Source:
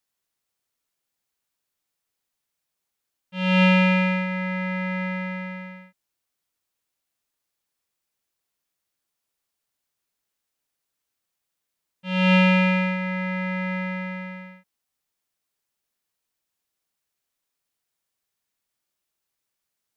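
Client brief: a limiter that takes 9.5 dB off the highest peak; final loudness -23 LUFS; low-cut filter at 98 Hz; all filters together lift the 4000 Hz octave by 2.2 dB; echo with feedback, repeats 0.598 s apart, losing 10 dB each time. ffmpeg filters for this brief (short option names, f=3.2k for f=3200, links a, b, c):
-af "highpass=98,equalizer=f=4k:t=o:g=3.5,alimiter=limit=-14.5dB:level=0:latency=1,aecho=1:1:598|1196|1794|2392:0.316|0.101|0.0324|0.0104,volume=4dB"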